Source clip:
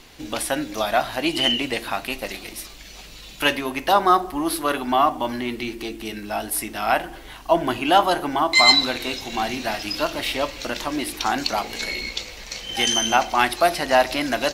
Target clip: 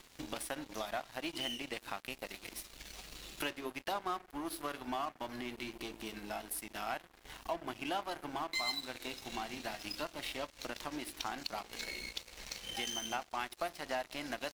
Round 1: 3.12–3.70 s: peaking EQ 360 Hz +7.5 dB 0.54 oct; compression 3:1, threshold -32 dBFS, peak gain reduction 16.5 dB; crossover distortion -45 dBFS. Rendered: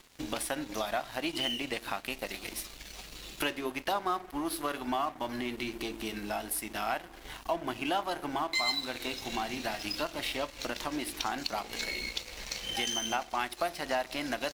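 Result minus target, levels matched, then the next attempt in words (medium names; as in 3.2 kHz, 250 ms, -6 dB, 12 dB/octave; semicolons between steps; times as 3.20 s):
compression: peak gain reduction -5.5 dB
3.12–3.70 s: peaking EQ 360 Hz +7.5 dB 0.54 oct; compression 3:1, threshold -40 dBFS, peak gain reduction 22 dB; crossover distortion -45 dBFS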